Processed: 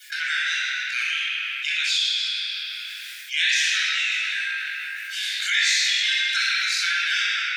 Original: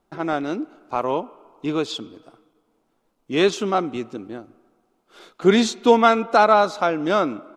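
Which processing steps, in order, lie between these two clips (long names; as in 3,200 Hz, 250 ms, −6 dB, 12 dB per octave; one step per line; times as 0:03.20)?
harmonic-percussive split with one part muted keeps percussive
Butterworth high-pass 1,600 Hz 96 dB per octave
0:03.54–0:05.88: double-tracking delay 20 ms −2.5 dB
convolution reverb RT60 2.0 s, pre-delay 19 ms, DRR −7 dB
envelope flattener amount 70%
level −2.5 dB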